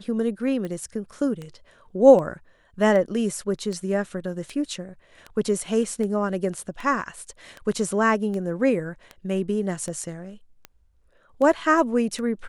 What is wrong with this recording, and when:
tick 78 rpm -21 dBFS

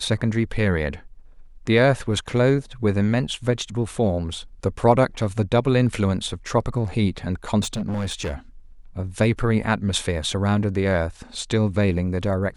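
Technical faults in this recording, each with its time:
7.62–8.34 s: clipped -22.5 dBFS

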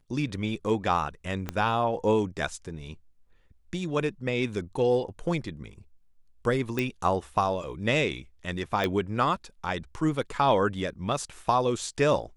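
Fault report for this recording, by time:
1.49 s: pop -16 dBFS
6.79 s: pop
8.84 s: pop -15 dBFS

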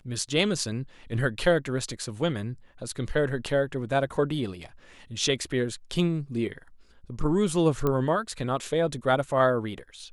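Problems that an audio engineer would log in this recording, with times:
7.87 s: pop -14 dBFS

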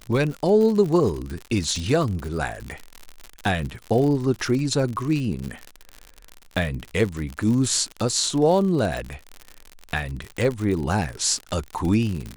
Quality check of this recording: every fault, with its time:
crackle 71 per s -27 dBFS

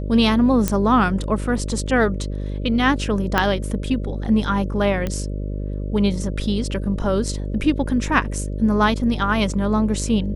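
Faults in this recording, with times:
buzz 50 Hz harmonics 12 -26 dBFS
0.68 s: pop -5 dBFS
3.38 s: pop -4 dBFS
5.07 s: pop -12 dBFS

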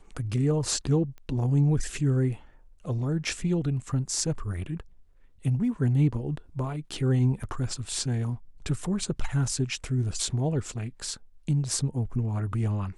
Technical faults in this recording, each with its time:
1.18 s: pop -32 dBFS
7.43–7.44 s: dropout 5.1 ms

